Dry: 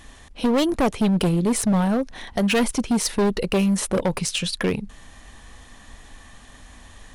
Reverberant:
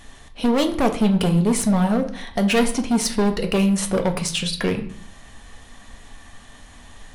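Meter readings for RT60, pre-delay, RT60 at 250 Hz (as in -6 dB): 0.55 s, 4 ms, 0.75 s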